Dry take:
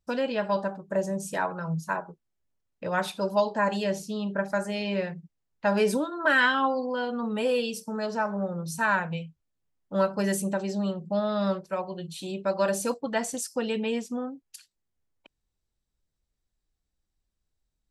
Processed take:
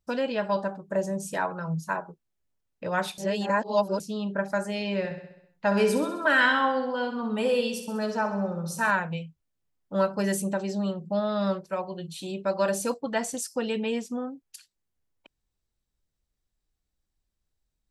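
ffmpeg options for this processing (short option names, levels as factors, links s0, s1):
-filter_complex "[0:a]asettb=1/sr,asplit=3[s0][s1][s2];[s0]atrim=end=4.984[s3];[s1]atrim=start=4.98:end=8.91,asetpts=PTS-STARTPTS,afade=t=in:d=0.004:c=qsin,afade=t=out:st=3.926:d=0.004:c=qsin,aecho=1:1:65|130|195|260|325|390|455:0.355|0.206|0.119|0.0692|0.0402|0.0233|0.0135,atrim=end_sample=173313[s4];[s2]atrim=start=8.906[s5];[s3][s4]acrossfade=d=0.004:c1=hsin:c2=qsin[s6];[s6][s5]acrossfade=d=0.004:c1=qsin:c2=hsin,asplit=3[s7][s8][s9];[s7]atrim=end=3.182[s10];[s8]atrim=start=3.178:end=4.002,asetpts=PTS-STARTPTS,areverse[s11];[s9]atrim=start=3.998[s12];[s10][s11]acrossfade=d=0.004:c1=hsin:c2=hsin[s13];[s13][s12]acrossfade=d=0.004:c1=hsin:c2=hsin"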